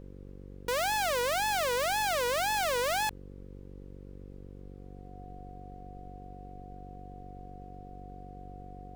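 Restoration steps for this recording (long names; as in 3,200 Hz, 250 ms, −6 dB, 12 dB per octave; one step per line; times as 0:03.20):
hum removal 47.9 Hz, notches 11
notch filter 730 Hz, Q 30
broadband denoise 30 dB, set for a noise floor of −47 dBFS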